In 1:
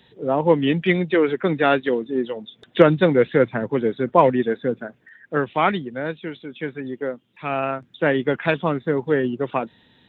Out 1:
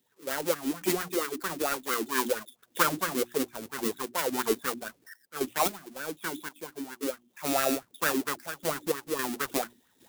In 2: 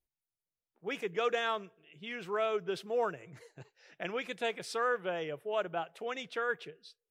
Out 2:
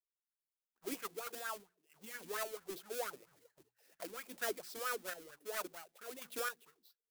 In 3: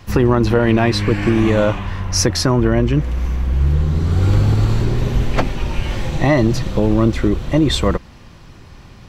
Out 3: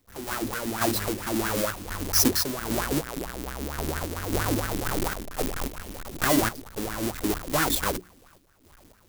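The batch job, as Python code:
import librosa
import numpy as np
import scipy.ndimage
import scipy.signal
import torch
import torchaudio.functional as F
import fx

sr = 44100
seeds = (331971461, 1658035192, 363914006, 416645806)

y = fx.halfwave_hold(x, sr)
y = fx.rider(y, sr, range_db=4, speed_s=0.5)
y = F.preemphasis(torch.from_numpy(y), 0.8).numpy()
y = fx.hum_notches(y, sr, base_hz=60, count=6)
y = fx.tremolo_random(y, sr, seeds[0], hz=3.7, depth_pct=80)
y = fx.peak_eq(y, sr, hz=130.0, db=-6.0, octaves=0.21)
y = fx.bell_lfo(y, sr, hz=4.4, low_hz=260.0, high_hz=1600.0, db=17)
y = y * librosa.db_to_amplitude(-5.0)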